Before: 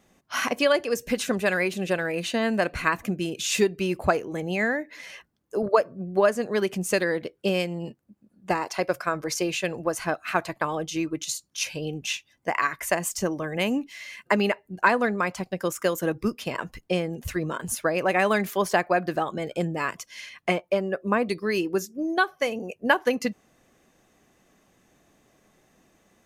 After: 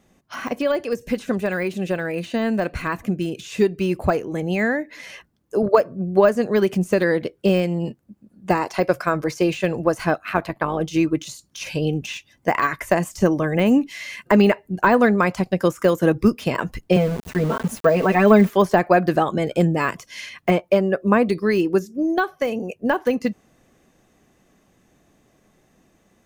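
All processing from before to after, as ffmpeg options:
-filter_complex "[0:a]asettb=1/sr,asplit=3[s0][s1][s2];[s0]atrim=end=10.184[s3];[s1]atrim=start=10.18:end=10.81,asetpts=PTS-STARTPTS,afade=t=in:d=0.004:c=qsin,afade=t=out:st=0.626:d=0.004:c=qsin,equalizer=f=7200:t=o:w=1.3:g=-10,tremolo=f=100:d=0.571[s4];[s2]atrim=start=10.806[s5];[s3][s4]acrossfade=d=0.004:c1=hsin:c2=qsin[s6];[s6][s5]acrossfade=d=0.004:c1=qsin:c2=hsin,asettb=1/sr,asplit=3[s7][s8][s9];[s7]atrim=end=16.964[s10];[s8]atrim=start=16.96:end=18.49,asetpts=PTS-STARTPTS,afade=t=in:d=0.004:c=qsin,afade=t=out:st=1.526:d=0.004:c=qsin,highpass=130,aecho=1:1:4.5:0.9,atrim=end_sample=67473,aeval=exprs='val(0)*gte(abs(val(0)),0.0211)':c=same[s11];[s9]atrim=start=18.486[s12];[s10][s11]acrossfade=d=0.004:c1=hsin:c2=qsin[s13];[s13][s12]acrossfade=d=0.004:c1=qsin:c2=hsin,deesser=0.95,lowshelf=f=370:g=5.5,dynaudnorm=f=560:g=17:m=3.76"

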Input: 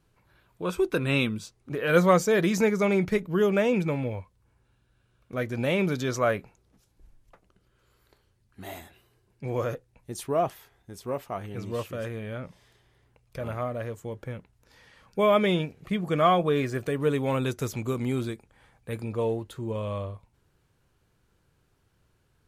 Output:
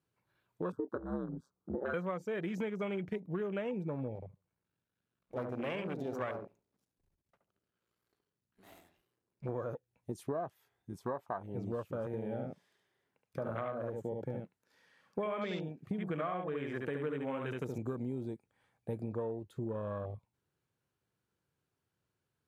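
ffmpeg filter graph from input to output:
-filter_complex "[0:a]asettb=1/sr,asplit=3[s0][s1][s2];[s0]atrim=end=0.724[s3];[s1]atrim=start=0.72:end=1.94,asetpts=PTS-STARTPTS,afade=t=in:d=0.004:c=qsin,afade=t=out:st=1.216:d=0.004:c=qsin,asuperstop=centerf=2300:order=8:qfactor=1.6,highshelf=f=1800:t=q:w=3:g=-12,aeval=exprs='val(0)*sin(2*PI*66*n/s)':c=same[s4];[s2]atrim=start=1.936[s5];[s3][s4]acrossfade=d=0.004:c1=hsin:c2=qsin[s6];[s6][s5]acrossfade=d=0.004:c1=qsin:c2=hsin,asettb=1/sr,asplit=3[s7][s8][s9];[s7]atrim=end=4.154[s10];[s8]atrim=start=4.15:end=9.49,asetpts=PTS-STARTPTS,afade=t=in:d=0.004:c=qsin,afade=t=out:st=5.336:d=0.004:c=qsin,aeval=exprs='max(val(0),0)':c=same,asplit=2[s11][s12];[s12]adelay=72,lowpass=f=910:p=1,volume=0.668,asplit=2[s13][s14];[s14]adelay=72,lowpass=f=910:p=1,volume=0.25,asplit=2[s15][s16];[s16]adelay=72,lowpass=f=910:p=1,volume=0.25,asplit=2[s17][s18];[s18]adelay=72,lowpass=f=910:p=1,volume=0.25[s19];[s11][s13][s15][s17][s19]amix=inputs=5:normalize=0,atrim=end_sample=235494[s20];[s9]atrim=start=9.486[s21];[s10][s20]acrossfade=d=0.004:c1=hsin:c2=qsin[s22];[s22][s21]acrossfade=d=0.004:c1=qsin:c2=hsin,asettb=1/sr,asplit=3[s23][s24][s25];[s23]atrim=end=10.924[s26];[s24]atrim=start=10.92:end=11.43,asetpts=PTS-STARTPTS,afade=t=in:d=0.004:c=qsin,afade=t=out:st=0.506:d=0.004:c=qsin,equalizer=f=930:w=1.6:g=9.5,bandreject=f=2800:w=22[s27];[s25]atrim=start=11.426[s28];[s26][s27]acrossfade=d=0.004:c1=hsin:c2=qsin[s29];[s29][s28]acrossfade=d=0.004:c1=qsin:c2=hsin,asettb=1/sr,asplit=3[s30][s31][s32];[s30]atrim=end=12.064[s33];[s31]atrim=start=12.06:end=17.78,asetpts=PTS-STARTPTS,afade=t=in:d=0.004:c=qsin,afade=t=out:st=5.716:d=0.004:c=qsin,highpass=120,equalizer=f=1600:w=3.6:g=4.5,aecho=1:1:71:0.668,atrim=end_sample=252252[s34];[s32]atrim=start=17.776[s35];[s33][s34]acrossfade=d=0.004:c1=hsin:c2=qsin[s36];[s36][s35]acrossfade=d=0.004:c1=qsin:c2=hsin,afwtdn=0.02,highpass=110,acompressor=threshold=0.0158:ratio=10,volume=1.26"

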